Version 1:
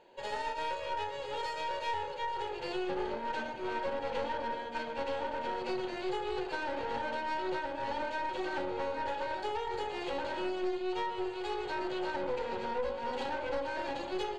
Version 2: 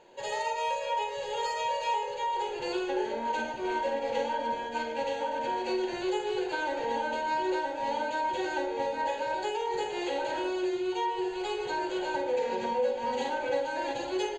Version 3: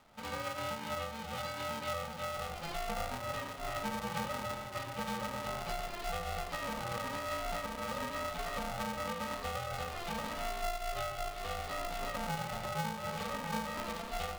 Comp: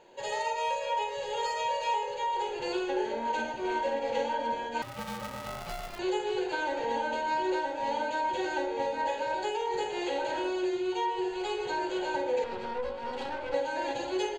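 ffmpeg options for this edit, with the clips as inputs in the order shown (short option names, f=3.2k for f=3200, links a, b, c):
-filter_complex "[1:a]asplit=3[a][b][c];[a]atrim=end=4.822[d];[2:a]atrim=start=4.818:end=5.992[e];[b]atrim=start=5.988:end=12.442[f];[0:a]atrim=start=12.438:end=13.542[g];[c]atrim=start=13.538[h];[d][e]acrossfade=d=0.004:c1=hsin:c2=hsin[i];[i][f]acrossfade=d=0.004:c1=hsin:c2=hsin[j];[j][g]acrossfade=d=0.004:c1=hsin:c2=hsin[k];[k][h]acrossfade=d=0.004:c1=hsin:c2=hsin"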